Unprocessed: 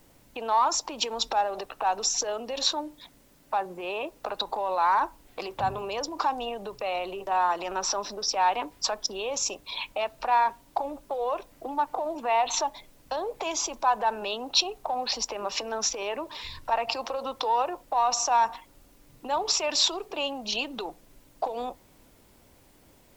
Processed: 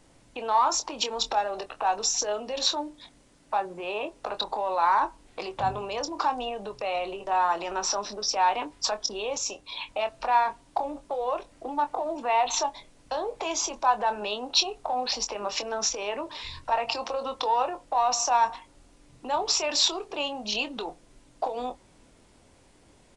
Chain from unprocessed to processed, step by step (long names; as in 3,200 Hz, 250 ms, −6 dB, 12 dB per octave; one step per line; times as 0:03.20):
double-tracking delay 24 ms −9 dB
downsampling to 22,050 Hz
0:09.37–0:09.89: tuned comb filter 98 Hz, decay 0.19 s, harmonics all, mix 40%